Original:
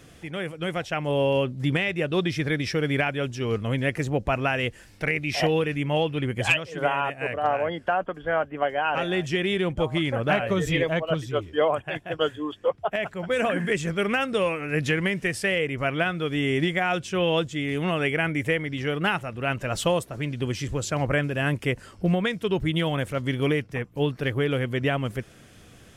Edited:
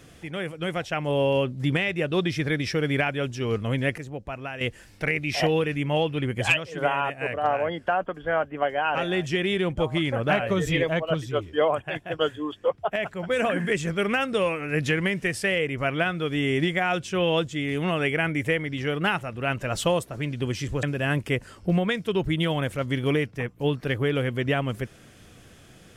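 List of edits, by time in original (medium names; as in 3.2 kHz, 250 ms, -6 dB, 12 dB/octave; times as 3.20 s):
3.98–4.61 s: gain -10 dB
20.83–21.19 s: delete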